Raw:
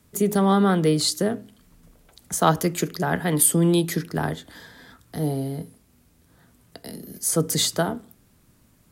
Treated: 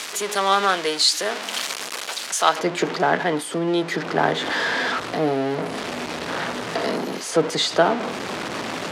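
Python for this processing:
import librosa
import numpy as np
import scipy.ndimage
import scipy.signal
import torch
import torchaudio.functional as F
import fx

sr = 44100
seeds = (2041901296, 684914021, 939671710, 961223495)

y = x + 0.5 * 10.0 ** (-24.0 / 20.0) * np.sign(x)
y = fx.tilt_eq(y, sr, slope=fx.steps((0.0, 3.5), (2.58, -1.5)))
y = fx.rider(y, sr, range_db=5, speed_s=0.5)
y = fx.bandpass_edges(y, sr, low_hz=470.0, high_hz=4300.0)
y = y * librosa.db_to_amplitude(4.5)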